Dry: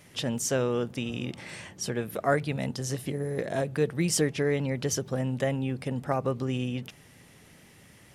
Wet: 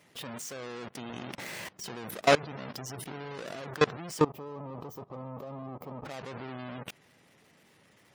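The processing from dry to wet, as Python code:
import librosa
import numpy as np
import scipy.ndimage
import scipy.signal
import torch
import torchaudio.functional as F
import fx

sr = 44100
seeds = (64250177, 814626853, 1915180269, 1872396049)

y = fx.halfwave_hold(x, sr)
y = fx.spec_gate(y, sr, threshold_db=-30, keep='strong')
y = fx.highpass(y, sr, hz=360.0, slope=6)
y = fx.level_steps(y, sr, step_db=22)
y = fx.spec_box(y, sr, start_s=4.21, length_s=1.84, low_hz=1300.0, high_hz=12000.0, gain_db=-16)
y = F.gain(torch.from_numpy(y), 3.5).numpy()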